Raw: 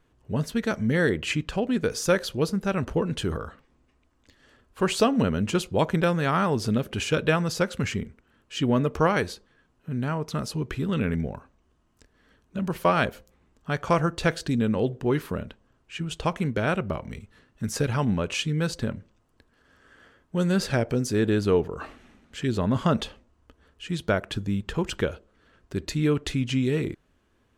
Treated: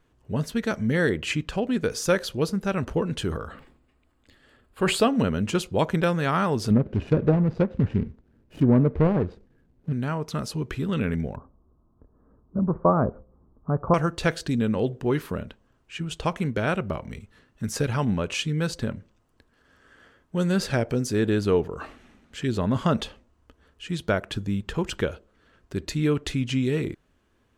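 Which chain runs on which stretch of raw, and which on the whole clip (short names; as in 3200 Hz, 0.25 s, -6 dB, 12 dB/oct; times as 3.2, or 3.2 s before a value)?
3.47–5.08 bell 5900 Hz -13.5 dB 0.25 oct + notch 1000 Hz, Q 16 + sustainer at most 78 dB/s
6.7–9.93 median filter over 41 samples + treble ducked by the level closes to 1600 Hz, closed at -21 dBFS + low shelf 410 Hz +7 dB
11.36–13.94 elliptic low-pass 1200 Hz, stop band 70 dB + low shelf 370 Hz +7 dB
whole clip: dry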